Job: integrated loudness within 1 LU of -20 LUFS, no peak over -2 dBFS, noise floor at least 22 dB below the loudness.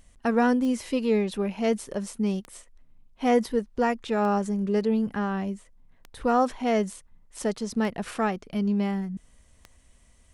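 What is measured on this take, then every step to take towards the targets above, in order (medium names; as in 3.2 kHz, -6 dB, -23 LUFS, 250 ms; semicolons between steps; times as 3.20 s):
clicks found 6; loudness -26.5 LUFS; peak level -9.5 dBFS; loudness target -20.0 LUFS
-> de-click; trim +6.5 dB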